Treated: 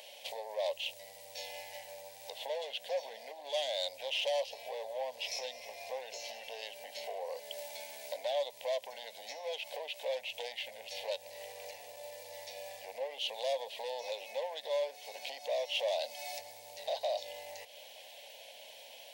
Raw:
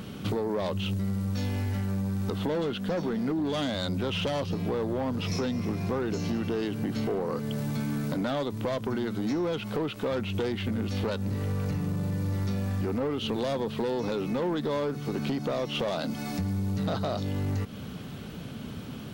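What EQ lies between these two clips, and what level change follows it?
elliptic high-pass 560 Hz, stop band 40 dB; Butterworth band-stop 1.3 kHz, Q 1; 0.0 dB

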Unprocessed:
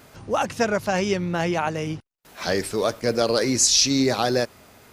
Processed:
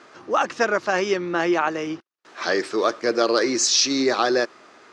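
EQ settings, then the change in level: cabinet simulation 310–6600 Hz, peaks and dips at 340 Hz +9 dB, 1.2 kHz +8 dB, 1.7 kHz +5 dB; 0.0 dB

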